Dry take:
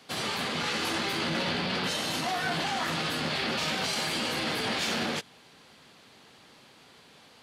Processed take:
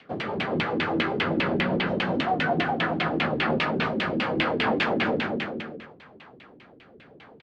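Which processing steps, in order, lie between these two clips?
rotary speaker horn 5 Hz, later 0.7 Hz, at 2.88; bouncing-ball echo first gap 0.24 s, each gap 0.75×, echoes 5; LFO low-pass saw down 5 Hz 260–2900 Hz; gain +5 dB

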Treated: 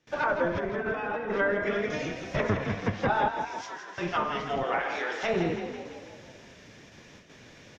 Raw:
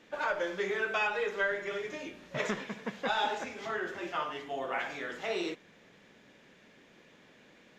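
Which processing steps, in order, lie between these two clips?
octaver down 1 oct, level +1 dB; gate with hold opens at -49 dBFS; treble ducked by the level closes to 1400 Hz, closed at -28.5 dBFS; 0.55–1.38 negative-ratio compressor -39 dBFS, ratio -1; 3.28–3.98 differentiator; 4.63–5.23 HPF 320 Hz 24 dB/oct; bell 5600 Hz +10.5 dB 0.46 oct; frequency-shifting echo 0.165 s, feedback 58%, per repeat +37 Hz, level -8 dB; gain +6 dB

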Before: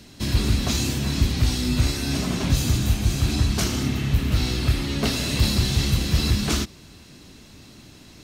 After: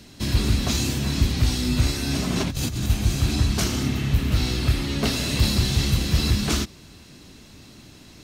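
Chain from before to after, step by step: 2.33–2.9 negative-ratio compressor -26 dBFS, ratio -1

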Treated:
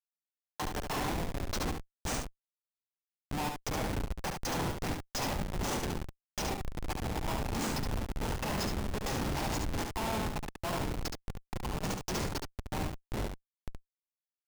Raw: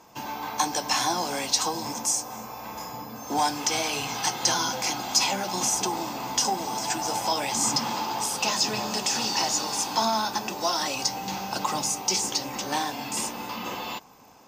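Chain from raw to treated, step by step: Schmitt trigger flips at -21.5 dBFS; echo 71 ms -5 dB; gain -5.5 dB

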